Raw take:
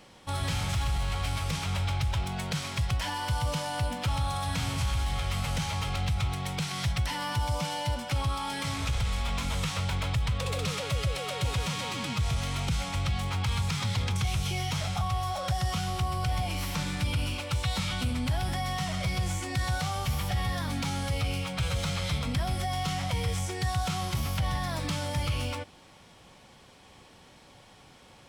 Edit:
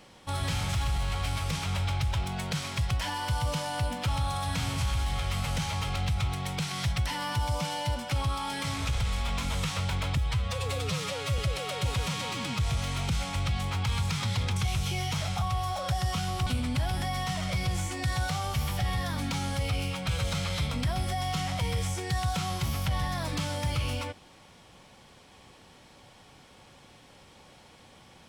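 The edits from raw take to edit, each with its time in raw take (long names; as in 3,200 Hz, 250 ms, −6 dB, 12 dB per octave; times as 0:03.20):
0:10.17–0:10.98: time-stretch 1.5×
0:16.06–0:17.98: remove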